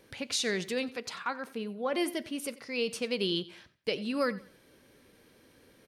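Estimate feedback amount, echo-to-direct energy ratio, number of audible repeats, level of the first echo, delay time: 30%, −18.5 dB, 2, −19.0 dB, 91 ms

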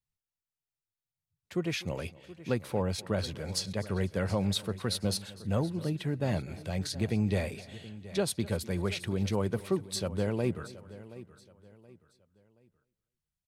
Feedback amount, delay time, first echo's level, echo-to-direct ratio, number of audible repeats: repeats not evenly spaced, 249 ms, −20.5 dB, −15.0 dB, 4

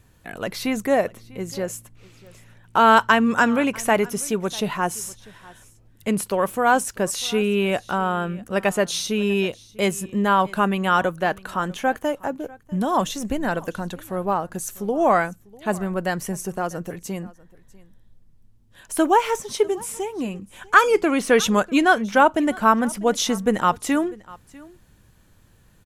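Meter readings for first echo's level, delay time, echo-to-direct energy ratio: −22.5 dB, 646 ms, −22.5 dB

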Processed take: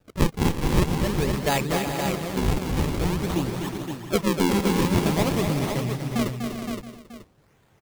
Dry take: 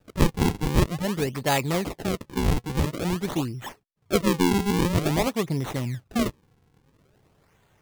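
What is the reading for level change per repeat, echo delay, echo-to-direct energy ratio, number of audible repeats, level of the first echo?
repeats not evenly spaced, 245 ms, −1.5 dB, 9, −6.5 dB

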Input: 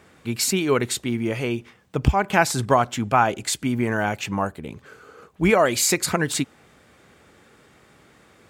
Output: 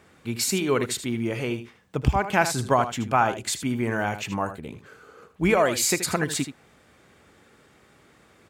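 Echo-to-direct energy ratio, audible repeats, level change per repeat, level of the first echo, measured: −11.0 dB, 1, repeats not evenly spaced, −11.0 dB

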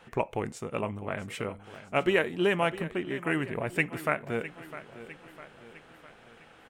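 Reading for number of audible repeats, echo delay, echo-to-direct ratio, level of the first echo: 4, 655 ms, −13.0 dB, −14.5 dB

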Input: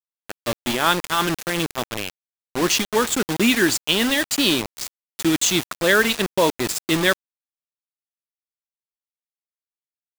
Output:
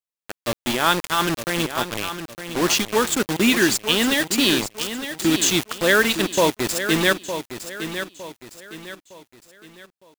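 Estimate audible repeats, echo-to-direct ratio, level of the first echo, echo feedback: 3, −9.5 dB, −10.0 dB, 38%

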